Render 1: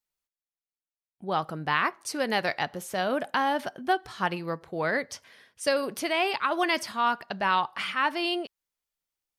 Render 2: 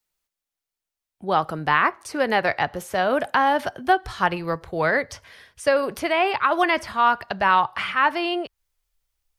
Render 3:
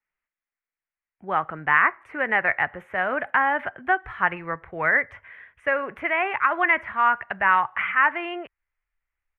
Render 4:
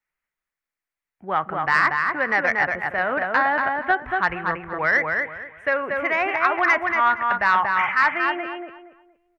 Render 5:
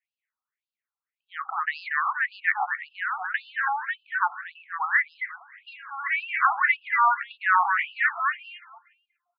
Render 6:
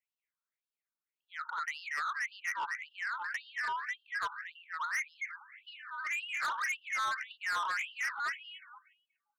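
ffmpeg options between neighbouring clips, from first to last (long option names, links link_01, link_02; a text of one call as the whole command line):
ffmpeg -i in.wav -filter_complex "[0:a]asubboost=boost=11.5:cutoff=64,acrossover=split=140|550|2500[link_01][link_02][link_03][link_04];[link_04]acompressor=threshold=-46dB:ratio=5[link_05];[link_01][link_02][link_03][link_05]amix=inputs=4:normalize=0,volume=7.5dB" out.wav
ffmpeg -i in.wav -af "firequalizer=gain_entry='entry(480,0);entry(1200,7);entry(2000,13);entry(4600,-29);entry(6500,-25);entry(10000,-23)':delay=0.05:min_phase=1,volume=-7.5dB" out.wav
ffmpeg -i in.wav -filter_complex "[0:a]acontrast=83,asplit=2[link_01][link_02];[link_02]adelay=234,lowpass=frequency=2500:poles=1,volume=-3dB,asplit=2[link_03][link_04];[link_04]adelay=234,lowpass=frequency=2500:poles=1,volume=0.28,asplit=2[link_05][link_06];[link_06]adelay=234,lowpass=frequency=2500:poles=1,volume=0.28,asplit=2[link_07][link_08];[link_08]adelay=234,lowpass=frequency=2500:poles=1,volume=0.28[link_09];[link_03][link_05][link_07][link_09]amix=inputs=4:normalize=0[link_10];[link_01][link_10]amix=inputs=2:normalize=0,volume=-5.5dB" out.wav
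ffmpeg -i in.wav -filter_complex "[0:a]acrossover=split=4000[link_01][link_02];[link_02]acompressor=threshold=-52dB:ratio=4:attack=1:release=60[link_03];[link_01][link_03]amix=inputs=2:normalize=0,afftfilt=real='re*between(b*sr/1024,970*pow(3700/970,0.5+0.5*sin(2*PI*1.8*pts/sr))/1.41,970*pow(3700/970,0.5+0.5*sin(2*PI*1.8*pts/sr))*1.41)':imag='im*between(b*sr/1024,970*pow(3700/970,0.5+0.5*sin(2*PI*1.8*pts/sr))/1.41,970*pow(3700/970,0.5+0.5*sin(2*PI*1.8*pts/sr))*1.41)':win_size=1024:overlap=0.75" out.wav
ffmpeg -i in.wav -af "afreqshift=130,asoftclip=type=tanh:threshold=-25dB,volume=-5.5dB" out.wav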